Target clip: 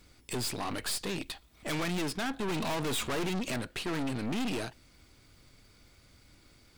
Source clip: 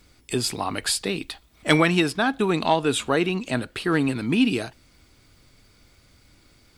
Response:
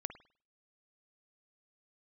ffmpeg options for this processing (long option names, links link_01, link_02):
-filter_complex "[0:a]asettb=1/sr,asplit=3[link_01][link_02][link_03];[link_01]atrim=end=2.484[link_04];[link_02]atrim=start=2.48:end=3.56,asetpts=PTS-STARTPTS,afade=type=in:duration=0.004:curve=qsin,afade=type=out:start_time=1.076:duration=0.004:curve=qsin,acontrast=57[link_05];[link_03]atrim=start=3.556[link_06];[link_04][link_05]acrossfade=duration=0.004:curve1=hsin:curve2=qsin[link_07];[link_07][link_06]acrossfade=duration=0.004:curve1=qsin:curve2=hsin,aeval=exprs='(tanh(35.5*val(0)+0.65)-tanh(0.65))/35.5':channel_layout=same"